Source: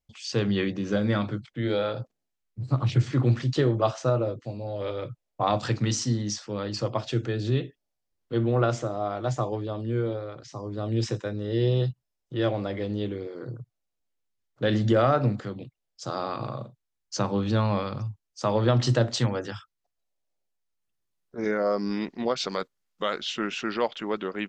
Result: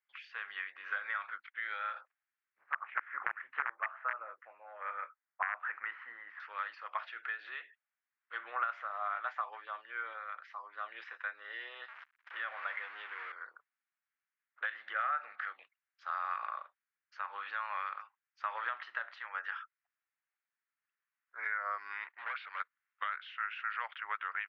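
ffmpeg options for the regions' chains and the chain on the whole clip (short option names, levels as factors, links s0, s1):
-filter_complex "[0:a]asettb=1/sr,asplit=3[s0][s1][s2];[s0]atrim=end=2.614[s3];[s1]atrim=start=2.61:end=6.4,asetpts=PTS-STARTPTS,afade=t=in:d=0.004:c=qsin,afade=t=out:st=3.786:d=0.004:c=qsin,aeval=exprs='(mod(4.73*val(0)+1,2)-1)/4.73':c=same,lowpass=f=2000:w=0.5412,lowpass=f=2000:w=1.3066[s4];[s2]atrim=start=6.396[s5];[s3][s4]acrossfade=d=0.004:c1=hsin:c2=qsin[s6];[s6][s5]acrossfade=d=0.004:c1=qsin:c2=hsin,asettb=1/sr,asplit=3[s7][s8][s9];[s7]atrim=end=11.884[s10];[s8]atrim=start=11.88:end=13.32,asetpts=PTS-STARTPTS,afade=t=in:d=0.004:c=qsin,afade=t=out:st=1.436:d=0.004:c=qsin,aeval=exprs='val(0)+0.5*0.0188*sgn(val(0))':c=same,highpass=150,agate=range=0.224:threshold=0.00224:ratio=16:release=100:detection=peak[s11];[s9]atrim=start=13.316[s12];[s10][s11]acrossfade=d=0.004:c1=hsin:c2=qsin[s13];[s13][s12]acrossfade=d=0.004:c1=qsin:c2=hsin,asettb=1/sr,asplit=3[s14][s15][s16];[s14]atrim=end=14.924[s17];[s15]atrim=start=14.92:end=15.6,asetpts=PTS-STARTPTS,afade=t=in:d=0.004:c=qsin,afade=t=out:st=0.676:d=0.004:c=qsin,asuperstop=centerf=1000:order=4:qfactor=6,acompressor=mode=upward:threshold=0.0282:ratio=2.5:attack=3.2:release=140:knee=2.83:detection=peak[s18];[s16]atrim=start=15.596[s19];[s17][s18]acrossfade=d=0.004:c1=hsin:c2=qsin[s20];[s20][s19]acrossfade=d=0.004:c1=qsin:c2=hsin,asettb=1/sr,asplit=3[s21][s22][s23];[s21]atrim=end=22.044[s24];[s22]atrim=start=22.04:end=22.6,asetpts=PTS-STARTPTS,afade=t=in:d=0.004:c=qsin,afade=t=out:st=0.556:d=0.004:c=qsin,agate=range=0.282:threshold=0.00447:ratio=16:release=100:detection=peak,lowpass=f=4300:w=0.5412,lowpass=f=4300:w=1.3066,asoftclip=type=hard:threshold=0.0335[s25];[s23]atrim=start=22.596[s26];[s24][s25]acrossfade=d=0.004:c1=hsin:c2=qsin[s27];[s27][s26]acrossfade=d=0.004:c1=qsin:c2=hsin,highpass=f=1400:w=0.5412,highpass=f=1400:w=1.3066,acompressor=threshold=0.00891:ratio=6,lowpass=f=1900:w=0.5412,lowpass=f=1900:w=1.3066,volume=3.35"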